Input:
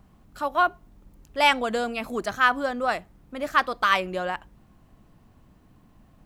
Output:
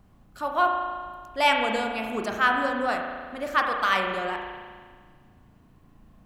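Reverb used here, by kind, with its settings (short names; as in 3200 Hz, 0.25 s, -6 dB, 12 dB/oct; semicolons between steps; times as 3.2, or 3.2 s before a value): spring tank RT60 1.7 s, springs 36 ms, chirp 70 ms, DRR 2 dB; gain -2.5 dB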